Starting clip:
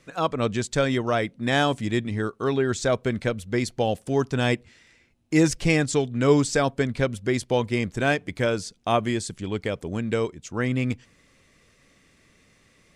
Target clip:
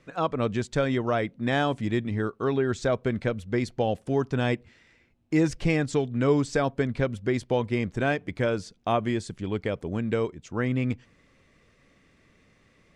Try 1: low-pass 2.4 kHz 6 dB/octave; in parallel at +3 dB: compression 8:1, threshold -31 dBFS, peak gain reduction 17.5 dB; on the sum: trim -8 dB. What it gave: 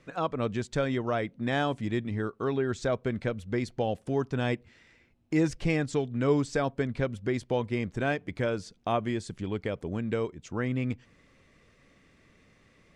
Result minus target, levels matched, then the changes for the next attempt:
compression: peak gain reduction +9 dB
change: compression 8:1, threshold -20.5 dBFS, peak gain reduction 8.5 dB

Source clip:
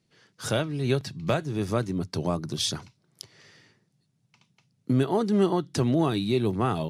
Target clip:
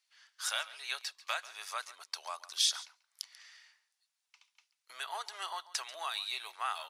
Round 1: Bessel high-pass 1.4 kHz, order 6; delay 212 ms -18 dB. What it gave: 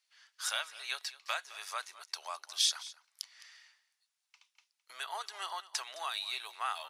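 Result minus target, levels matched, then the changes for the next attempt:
echo 73 ms late
change: delay 139 ms -18 dB

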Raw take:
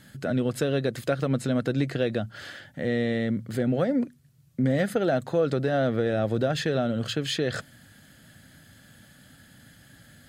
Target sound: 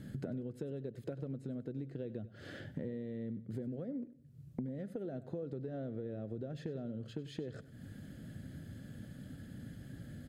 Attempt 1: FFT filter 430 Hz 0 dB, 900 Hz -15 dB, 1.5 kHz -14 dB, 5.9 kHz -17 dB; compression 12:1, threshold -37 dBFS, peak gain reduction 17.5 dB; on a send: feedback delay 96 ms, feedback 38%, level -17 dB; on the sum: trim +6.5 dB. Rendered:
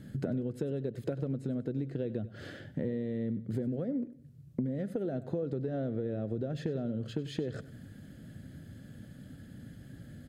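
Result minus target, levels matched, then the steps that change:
compression: peak gain reduction -7.5 dB
change: compression 12:1, threshold -45 dBFS, peak gain reduction 24.5 dB

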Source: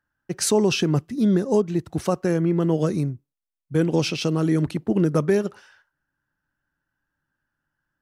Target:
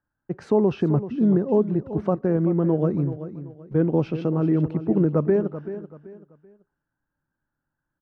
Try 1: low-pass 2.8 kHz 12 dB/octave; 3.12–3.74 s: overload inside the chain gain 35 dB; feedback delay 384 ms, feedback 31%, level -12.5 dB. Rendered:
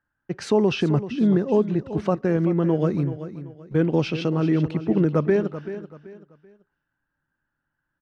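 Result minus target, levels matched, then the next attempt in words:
2 kHz band +9.0 dB
low-pass 1.1 kHz 12 dB/octave; 3.12–3.74 s: overload inside the chain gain 35 dB; feedback delay 384 ms, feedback 31%, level -12.5 dB

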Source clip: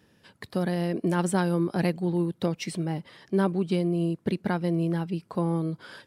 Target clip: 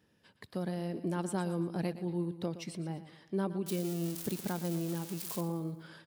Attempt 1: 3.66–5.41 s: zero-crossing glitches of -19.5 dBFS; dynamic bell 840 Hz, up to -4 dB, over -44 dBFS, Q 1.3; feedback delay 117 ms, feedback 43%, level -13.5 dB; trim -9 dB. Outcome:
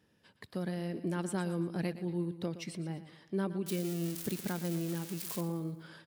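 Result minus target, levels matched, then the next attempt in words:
2 kHz band +2.5 dB
3.66–5.41 s: zero-crossing glitches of -19.5 dBFS; dynamic bell 1.9 kHz, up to -4 dB, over -44 dBFS, Q 1.3; feedback delay 117 ms, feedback 43%, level -13.5 dB; trim -9 dB

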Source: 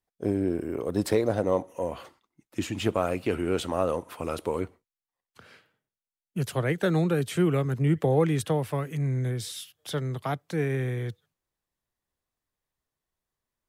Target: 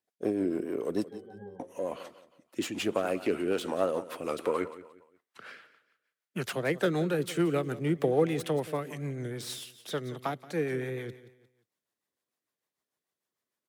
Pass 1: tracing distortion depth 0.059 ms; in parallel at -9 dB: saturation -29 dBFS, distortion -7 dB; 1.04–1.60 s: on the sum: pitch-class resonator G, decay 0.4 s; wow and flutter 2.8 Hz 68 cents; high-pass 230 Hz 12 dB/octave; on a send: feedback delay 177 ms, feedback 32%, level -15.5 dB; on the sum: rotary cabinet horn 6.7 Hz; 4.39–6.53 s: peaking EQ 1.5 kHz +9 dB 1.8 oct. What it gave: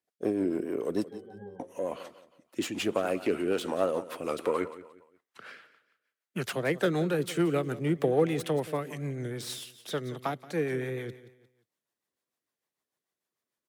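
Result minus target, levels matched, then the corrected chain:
saturation: distortion -4 dB
tracing distortion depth 0.059 ms; in parallel at -9 dB: saturation -38.5 dBFS, distortion -2 dB; 1.04–1.60 s: on the sum: pitch-class resonator G, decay 0.4 s; wow and flutter 2.8 Hz 68 cents; high-pass 230 Hz 12 dB/octave; on a send: feedback delay 177 ms, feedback 32%, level -15.5 dB; on the sum: rotary cabinet horn 6.7 Hz; 4.39–6.53 s: peaking EQ 1.5 kHz +9 dB 1.8 oct

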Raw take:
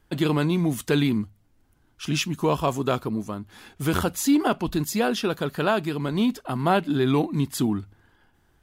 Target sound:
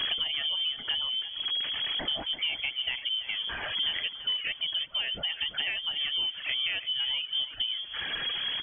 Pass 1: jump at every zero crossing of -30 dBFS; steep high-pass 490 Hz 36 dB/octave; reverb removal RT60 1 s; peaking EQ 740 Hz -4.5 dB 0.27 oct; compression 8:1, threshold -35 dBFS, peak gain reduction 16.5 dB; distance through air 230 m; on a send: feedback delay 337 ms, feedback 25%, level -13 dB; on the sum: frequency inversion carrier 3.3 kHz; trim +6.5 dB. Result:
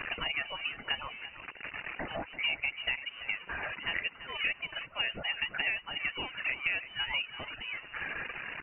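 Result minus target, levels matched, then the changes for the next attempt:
500 Hz band +7.5 dB
remove: steep high-pass 490 Hz 36 dB/octave

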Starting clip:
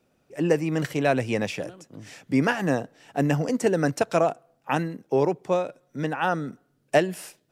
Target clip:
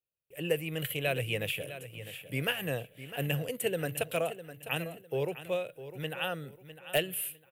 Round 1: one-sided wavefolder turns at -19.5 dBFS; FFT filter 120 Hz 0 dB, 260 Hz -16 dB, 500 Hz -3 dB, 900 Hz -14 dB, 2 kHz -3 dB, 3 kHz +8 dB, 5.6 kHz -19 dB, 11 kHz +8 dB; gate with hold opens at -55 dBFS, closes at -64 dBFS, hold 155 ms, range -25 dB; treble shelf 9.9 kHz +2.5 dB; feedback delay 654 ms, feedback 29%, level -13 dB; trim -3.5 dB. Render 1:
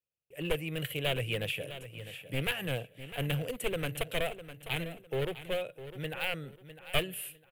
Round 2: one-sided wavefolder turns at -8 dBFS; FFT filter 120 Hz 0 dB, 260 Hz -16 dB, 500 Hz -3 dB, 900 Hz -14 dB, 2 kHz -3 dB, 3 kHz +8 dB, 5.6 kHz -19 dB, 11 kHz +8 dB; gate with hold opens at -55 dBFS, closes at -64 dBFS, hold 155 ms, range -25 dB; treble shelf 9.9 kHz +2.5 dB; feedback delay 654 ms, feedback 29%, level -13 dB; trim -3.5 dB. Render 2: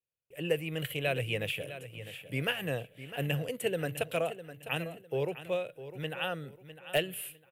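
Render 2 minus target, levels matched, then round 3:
8 kHz band -4.5 dB
one-sided wavefolder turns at -8 dBFS; FFT filter 120 Hz 0 dB, 260 Hz -16 dB, 500 Hz -3 dB, 900 Hz -14 dB, 2 kHz -3 dB, 3 kHz +8 dB, 5.6 kHz -19 dB, 11 kHz +8 dB; gate with hold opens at -55 dBFS, closes at -64 dBFS, hold 155 ms, range -25 dB; treble shelf 9.9 kHz +12.5 dB; feedback delay 654 ms, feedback 29%, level -13 dB; trim -3.5 dB

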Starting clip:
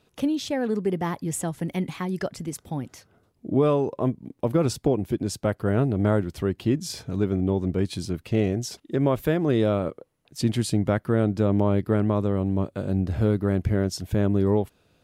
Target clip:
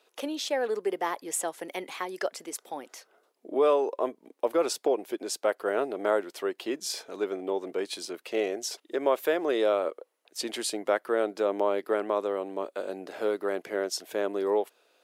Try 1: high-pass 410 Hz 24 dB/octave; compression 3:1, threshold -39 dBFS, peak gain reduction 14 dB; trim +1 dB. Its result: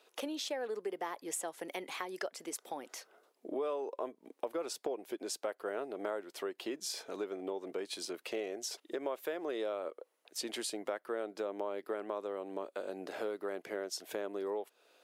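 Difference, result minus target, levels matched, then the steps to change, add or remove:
compression: peak gain reduction +14 dB
remove: compression 3:1, threshold -39 dBFS, peak gain reduction 14 dB

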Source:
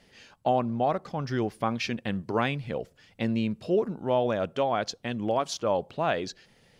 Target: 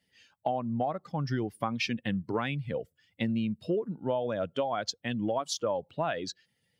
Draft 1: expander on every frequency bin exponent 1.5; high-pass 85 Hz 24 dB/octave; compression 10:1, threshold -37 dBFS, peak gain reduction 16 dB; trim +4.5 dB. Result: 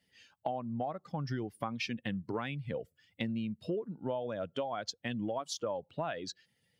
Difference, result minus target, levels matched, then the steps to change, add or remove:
compression: peak gain reduction +6 dB
change: compression 10:1, threshold -30.5 dBFS, peak gain reduction 10 dB

